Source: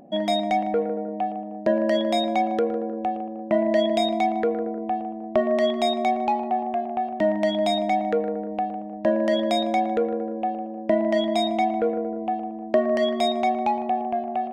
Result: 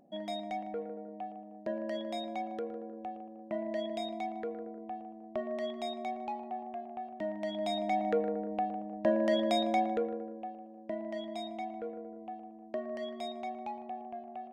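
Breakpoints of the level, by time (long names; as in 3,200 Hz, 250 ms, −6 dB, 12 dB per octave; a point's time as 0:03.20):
0:07.37 −15 dB
0:08.09 −6.5 dB
0:09.81 −6.5 dB
0:10.56 −17 dB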